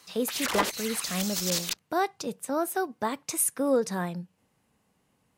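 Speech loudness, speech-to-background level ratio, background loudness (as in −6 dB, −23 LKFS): −30.0 LKFS, 0.5 dB, −30.5 LKFS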